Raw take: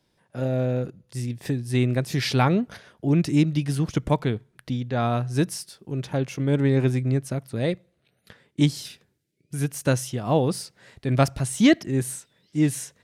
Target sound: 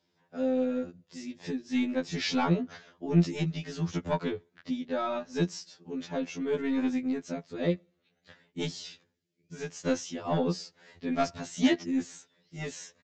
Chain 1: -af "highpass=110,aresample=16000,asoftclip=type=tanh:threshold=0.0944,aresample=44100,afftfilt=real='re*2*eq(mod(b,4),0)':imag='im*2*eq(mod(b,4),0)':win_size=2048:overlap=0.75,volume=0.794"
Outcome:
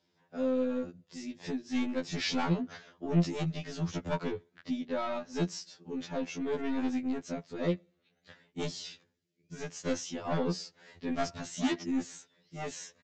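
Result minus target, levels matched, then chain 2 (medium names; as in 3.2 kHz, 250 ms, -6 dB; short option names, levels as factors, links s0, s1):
saturation: distortion +10 dB
-af "highpass=110,aresample=16000,asoftclip=type=tanh:threshold=0.282,aresample=44100,afftfilt=real='re*2*eq(mod(b,4),0)':imag='im*2*eq(mod(b,4),0)':win_size=2048:overlap=0.75,volume=0.794"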